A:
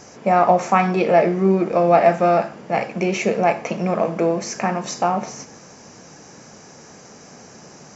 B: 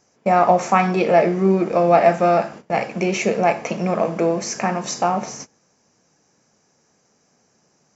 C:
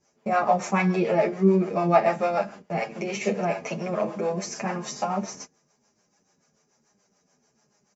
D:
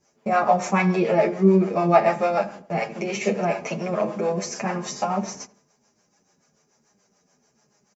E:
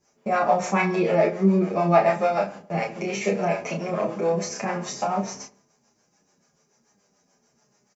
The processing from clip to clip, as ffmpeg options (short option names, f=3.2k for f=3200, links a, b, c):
-af "agate=range=-20dB:threshold=-35dB:ratio=16:detection=peak,highshelf=f=5.8k:g=5"
-filter_complex "[0:a]acrossover=split=430[a][b];[a]aeval=exprs='val(0)*(1-0.7/2+0.7/2*cos(2*PI*6.9*n/s))':c=same[c];[b]aeval=exprs='val(0)*(1-0.7/2-0.7/2*cos(2*PI*6.9*n/s))':c=same[d];[c][d]amix=inputs=2:normalize=0,aecho=1:1:4.9:0.33,asplit=2[e][f];[f]adelay=8.5,afreqshift=-1.1[g];[e][g]amix=inputs=2:normalize=1"
-filter_complex "[0:a]asplit=2[a][b];[b]adelay=84,lowpass=f=1.4k:p=1,volume=-17dB,asplit=2[c][d];[d]adelay=84,lowpass=f=1.4k:p=1,volume=0.48,asplit=2[e][f];[f]adelay=84,lowpass=f=1.4k:p=1,volume=0.48,asplit=2[g][h];[h]adelay=84,lowpass=f=1.4k:p=1,volume=0.48[i];[a][c][e][g][i]amix=inputs=5:normalize=0,volume=2.5dB"
-filter_complex "[0:a]asplit=2[a][b];[b]adelay=30,volume=-4.5dB[c];[a][c]amix=inputs=2:normalize=0,volume=-2dB"